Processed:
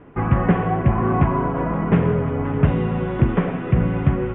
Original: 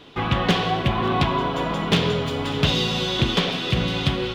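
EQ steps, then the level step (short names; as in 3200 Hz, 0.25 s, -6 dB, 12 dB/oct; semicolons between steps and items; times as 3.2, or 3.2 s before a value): inverse Chebyshev low-pass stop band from 4000 Hz, stop band 40 dB; air absorption 150 m; low shelf 290 Hz +7 dB; 0.0 dB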